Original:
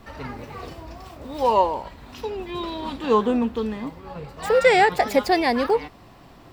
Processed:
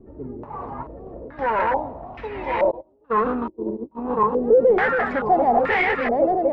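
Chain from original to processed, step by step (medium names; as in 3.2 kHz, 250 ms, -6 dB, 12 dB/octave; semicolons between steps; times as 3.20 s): backward echo that repeats 529 ms, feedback 64%, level -0.5 dB; 0.83–1.39 s: compressor with a negative ratio -37 dBFS, ratio -1; 2.71–4.17 s: gate -20 dBFS, range -33 dB; hard clipper -18 dBFS, distortion -7 dB; step-sequenced low-pass 2.3 Hz 370–2100 Hz; trim -3 dB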